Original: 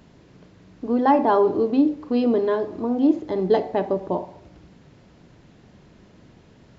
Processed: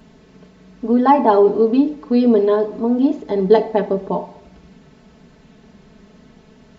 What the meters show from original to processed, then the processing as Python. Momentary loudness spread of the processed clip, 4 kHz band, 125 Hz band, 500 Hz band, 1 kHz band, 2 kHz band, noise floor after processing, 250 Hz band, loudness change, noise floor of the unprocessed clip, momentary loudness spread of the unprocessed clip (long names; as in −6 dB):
9 LU, +4.5 dB, +5.5 dB, +6.0 dB, +5.0 dB, +3.0 dB, −49 dBFS, +4.5 dB, +5.0 dB, −53 dBFS, 9 LU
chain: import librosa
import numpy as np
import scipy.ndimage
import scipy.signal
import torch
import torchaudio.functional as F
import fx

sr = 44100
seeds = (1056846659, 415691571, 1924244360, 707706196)

y = x + 0.84 * np.pad(x, (int(4.6 * sr / 1000.0), 0))[:len(x)]
y = y * librosa.db_to_amplitude(2.0)